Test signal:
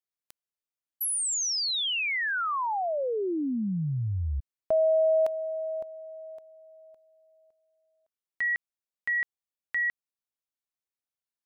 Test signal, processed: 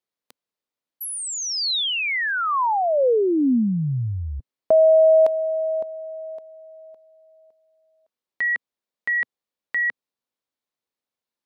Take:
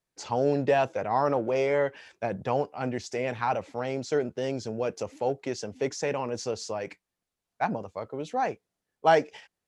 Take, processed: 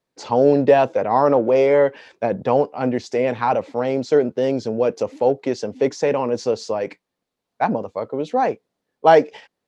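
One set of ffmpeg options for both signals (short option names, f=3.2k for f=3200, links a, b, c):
-af "equalizer=f=125:t=o:w=1:g=5,equalizer=f=250:t=o:w=1:g=10,equalizer=f=500:t=o:w=1:g=10,equalizer=f=1k:t=o:w=1:g=7,equalizer=f=2k:t=o:w=1:g=4,equalizer=f=4k:t=o:w=1:g=7,volume=-2dB"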